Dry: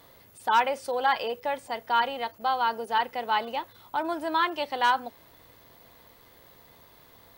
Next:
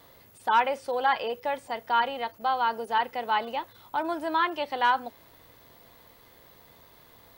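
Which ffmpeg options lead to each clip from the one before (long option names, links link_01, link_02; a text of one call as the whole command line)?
ffmpeg -i in.wav -filter_complex "[0:a]acrossover=split=3700[link_01][link_02];[link_02]acompressor=threshold=-49dB:ratio=4:attack=1:release=60[link_03];[link_01][link_03]amix=inputs=2:normalize=0" out.wav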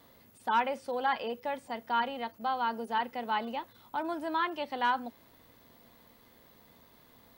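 ffmpeg -i in.wav -af "equalizer=frequency=230:width_type=o:width=0.54:gain=9.5,volume=-5.5dB" out.wav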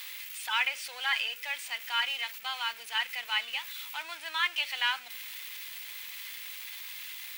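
ffmpeg -i in.wav -af "aeval=exprs='val(0)+0.5*0.00708*sgn(val(0))':channel_layout=same,highpass=frequency=2400:width_type=q:width=2.4,volume=6dB" out.wav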